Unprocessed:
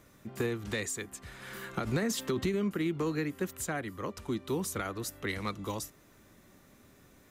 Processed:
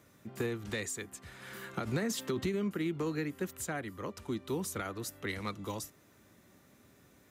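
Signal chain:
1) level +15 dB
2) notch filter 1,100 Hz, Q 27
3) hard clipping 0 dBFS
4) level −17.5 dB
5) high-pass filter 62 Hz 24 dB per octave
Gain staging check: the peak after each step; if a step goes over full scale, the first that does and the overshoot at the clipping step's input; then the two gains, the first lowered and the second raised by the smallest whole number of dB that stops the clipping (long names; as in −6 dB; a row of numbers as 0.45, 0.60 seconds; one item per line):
−4.5, −4.5, −4.5, −22.0, −21.0 dBFS
no step passes full scale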